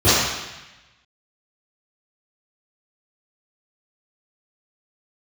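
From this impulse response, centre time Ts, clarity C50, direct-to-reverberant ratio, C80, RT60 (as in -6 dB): 104 ms, -3.0 dB, -16.5 dB, 0.5 dB, 1.0 s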